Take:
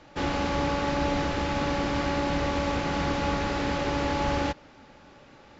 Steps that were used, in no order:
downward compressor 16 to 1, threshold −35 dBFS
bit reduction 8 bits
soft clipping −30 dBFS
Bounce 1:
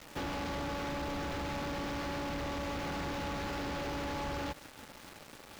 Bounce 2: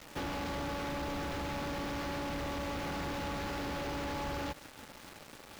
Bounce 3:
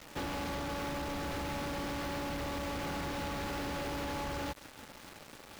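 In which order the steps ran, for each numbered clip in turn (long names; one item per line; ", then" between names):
bit reduction, then soft clipping, then downward compressor
soft clipping, then bit reduction, then downward compressor
soft clipping, then downward compressor, then bit reduction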